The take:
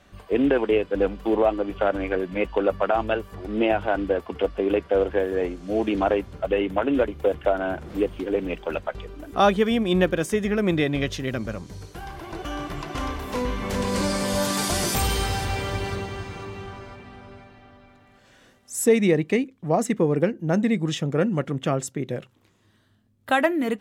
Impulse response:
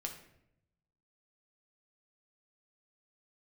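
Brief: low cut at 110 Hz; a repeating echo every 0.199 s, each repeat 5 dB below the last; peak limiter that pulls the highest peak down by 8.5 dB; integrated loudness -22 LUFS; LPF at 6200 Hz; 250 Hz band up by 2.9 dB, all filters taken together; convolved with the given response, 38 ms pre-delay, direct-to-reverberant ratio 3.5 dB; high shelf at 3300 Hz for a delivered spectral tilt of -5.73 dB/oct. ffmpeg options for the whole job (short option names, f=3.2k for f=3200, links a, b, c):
-filter_complex "[0:a]highpass=110,lowpass=6.2k,equalizer=f=250:t=o:g=4,highshelf=f=3.3k:g=-3.5,alimiter=limit=-14dB:level=0:latency=1,aecho=1:1:199|398|597|796|995|1194|1393:0.562|0.315|0.176|0.0988|0.0553|0.031|0.0173,asplit=2[a][b];[1:a]atrim=start_sample=2205,adelay=38[c];[b][c]afir=irnorm=-1:irlink=0,volume=-2.5dB[d];[a][d]amix=inputs=2:normalize=0"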